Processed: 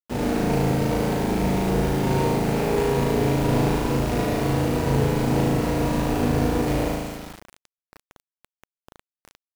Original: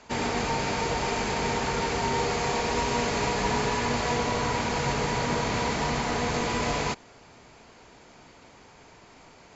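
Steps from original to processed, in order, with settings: median filter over 41 samples; flutter echo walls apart 6.3 m, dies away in 1.3 s; bit-crush 7-bit; gain +4 dB

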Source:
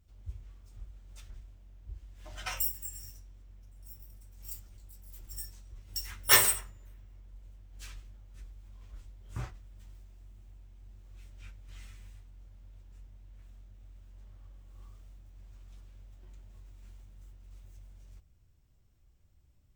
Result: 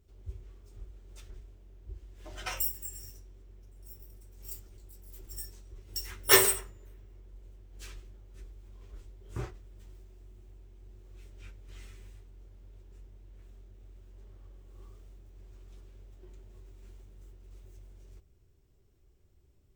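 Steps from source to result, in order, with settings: bell 390 Hz +14 dB 0.57 oct

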